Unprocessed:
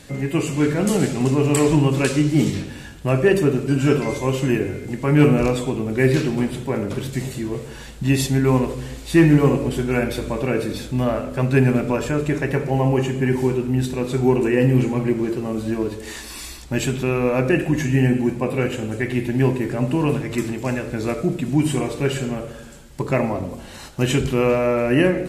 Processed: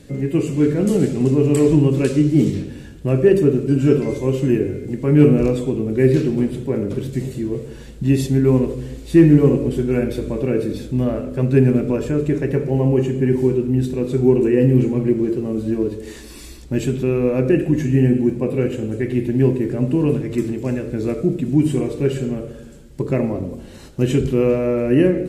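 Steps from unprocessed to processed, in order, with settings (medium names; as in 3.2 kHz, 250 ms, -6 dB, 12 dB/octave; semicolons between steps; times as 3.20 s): resonant low shelf 590 Hz +8 dB, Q 1.5; trim -6.5 dB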